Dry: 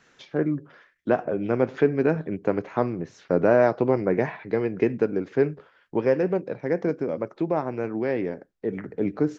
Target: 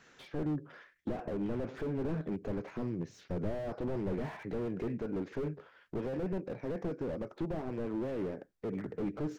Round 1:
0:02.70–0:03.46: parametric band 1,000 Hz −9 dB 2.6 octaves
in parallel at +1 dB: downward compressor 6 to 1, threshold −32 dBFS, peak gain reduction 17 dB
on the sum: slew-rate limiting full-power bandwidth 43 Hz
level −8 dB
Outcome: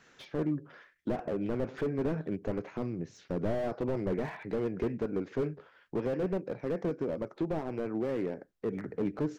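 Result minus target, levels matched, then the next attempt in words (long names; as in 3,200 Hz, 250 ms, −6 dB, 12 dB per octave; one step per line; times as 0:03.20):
slew-rate limiting: distortion −5 dB
0:02.70–0:03.46: parametric band 1,000 Hz −9 dB 2.6 octaves
in parallel at +1 dB: downward compressor 6 to 1, threshold −32 dBFS, peak gain reduction 17 dB
on the sum: slew-rate limiting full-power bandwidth 21 Hz
level −8 dB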